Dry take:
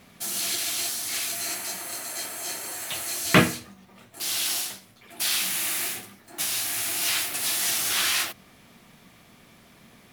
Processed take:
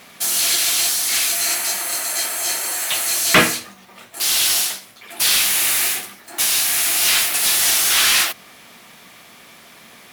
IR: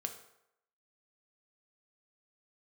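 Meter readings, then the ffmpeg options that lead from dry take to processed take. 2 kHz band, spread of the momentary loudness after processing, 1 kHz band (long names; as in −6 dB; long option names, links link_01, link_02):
+8.5 dB, 7 LU, +7.5 dB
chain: -filter_complex "[0:a]crystalizer=i=1:c=0,asplit=2[link_01][link_02];[link_02]highpass=frequency=720:poles=1,volume=17dB,asoftclip=type=tanh:threshold=-1.5dB[link_03];[link_01][link_03]amix=inputs=2:normalize=0,lowpass=frequency=4900:poles=1,volume=-6dB"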